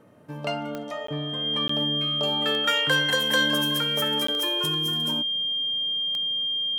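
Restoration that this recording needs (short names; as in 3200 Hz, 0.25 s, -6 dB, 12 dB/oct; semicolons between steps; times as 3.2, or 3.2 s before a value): de-click; notch 3200 Hz, Q 30; interpolate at 1.07/1.68/4.27, 14 ms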